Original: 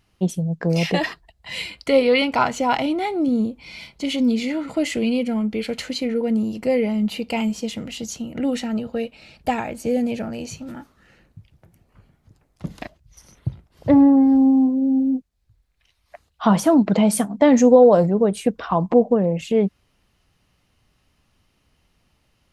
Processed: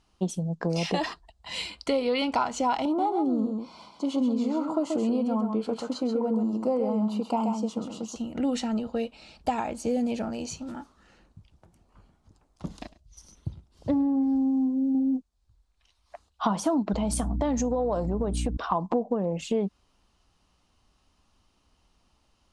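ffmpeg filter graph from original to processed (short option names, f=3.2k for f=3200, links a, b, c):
-filter_complex "[0:a]asettb=1/sr,asplit=3[a][b][c];[a]atrim=end=2.854[d];[b]atrim=start=2.85:end=8.16,asetpts=PTS-STARTPTS,afade=t=in:d=0.004:c=qsin,afade=t=out:st=5.306:d=0.004:c=qsin,highpass=140,highshelf=f=1.5k:t=q:w=3:g=-9,aecho=1:1:132:0.501,atrim=end_sample=234171[e];[c]atrim=start=8.156[f];[d][e]acrossfade=d=0.004:c1=hsin:c2=qsin[g];[g][f]acrossfade=d=0.004:c1=qsin:c2=hsin,asettb=1/sr,asplit=3[h][i][j];[h]atrim=end=12.774[k];[i]atrim=start=12.77:end=14.95,asetpts=PTS-STARTPTS,afade=t=in:d=0.004:c=qsin,afade=t=out:st=2.176:d=0.004:c=qsin,equalizer=f=1k:w=0.52:g=-8,aecho=1:1:103:0.1,atrim=end_sample=96138[l];[j]atrim=start=14.946[m];[k][l]acrossfade=d=0.004:c1=hsin:c2=qsin[n];[n][m]acrossfade=d=0.004:c1=qsin:c2=hsin,asettb=1/sr,asplit=3[o][p][q];[o]atrim=end=16.934[r];[p]atrim=start=16.93:end=18.57,asetpts=PTS-STARTPTS,afade=t=in:d=0.004:c=qsin,afade=t=out:st=1.636:d=0.004:c=qsin,aeval=exprs='val(0)+0.0708*(sin(2*PI*60*n/s)+sin(2*PI*2*60*n/s)/2+sin(2*PI*3*60*n/s)/3+sin(2*PI*4*60*n/s)/4+sin(2*PI*5*60*n/s)/5)':c=same,acompressor=threshold=-19dB:ratio=4:attack=3.2:release=140:knee=1:detection=peak[s];[q]atrim=start=18.566[t];[r][s]acrossfade=d=0.004:c1=hsin:c2=qsin[u];[u][t]acrossfade=d=0.004:c1=qsin:c2=hsin,equalizer=f=125:t=o:w=1:g=-10,equalizer=f=500:t=o:w=1:g=-4,equalizer=f=1k:t=o:w=1:g=4,equalizer=f=2k:t=o:w=1:g=-9,acompressor=threshold=-22dB:ratio=6,lowpass=f=9.3k:w=0.5412,lowpass=f=9.3k:w=1.3066"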